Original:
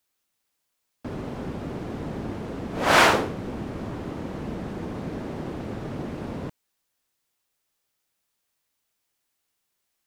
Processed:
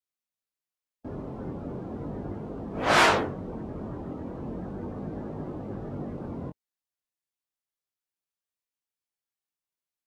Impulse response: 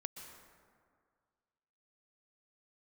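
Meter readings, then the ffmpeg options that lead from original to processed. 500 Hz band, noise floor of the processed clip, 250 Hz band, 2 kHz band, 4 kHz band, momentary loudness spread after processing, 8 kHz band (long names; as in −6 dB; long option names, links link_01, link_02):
−3.0 dB, below −85 dBFS, −3.0 dB, −3.0 dB, −3.0 dB, 16 LU, −4.5 dB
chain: -af "flanger=delay=19.5:depth=3.6:speed=0.37,afftdn=noise_reduction=14:noise_floor=-43"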